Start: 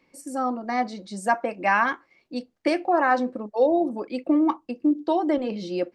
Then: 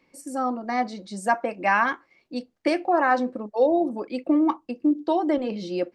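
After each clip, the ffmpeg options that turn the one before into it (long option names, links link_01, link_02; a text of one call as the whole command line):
ffmpeg -i in.wav -af anull out.wav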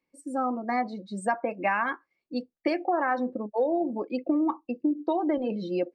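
ffmpeg -i in.wav -af "afftdn=noise_reduction=18:noise_floor=-37,acompressor=threshold=-22dB:ratio=6" out.wav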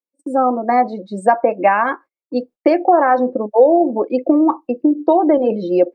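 ffmpeg -i in.wav -af "agate=range=-30dB:threshold=-47dB:ratio=16:detection=peak,equalizer=frequency=560:width_type=o:width=2.6:gain=13,volume=2.5dB" out.wav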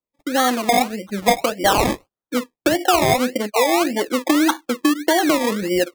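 ffmpeg -i in.wav -filter_complex "[0:a]acrossover=split=300|760|1800[link_01][link_02][link_03][link_04];[link_02]acompressor=threshold=-24dB:ratio=6[link_05];[link_01][link_05][link_03][link_04]amix=inputs=4:normalize=0,acrusher=samples=24:mix=1:aa=0.000001:lfo=1:lforange=14.4:lforate=1.7" out.wav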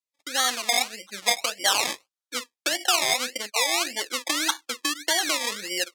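ffmpeg -i in.wav -af "bandpass=frequency=5400:width_type=q:width=0.68:csg=0,volume=3dB" out.wav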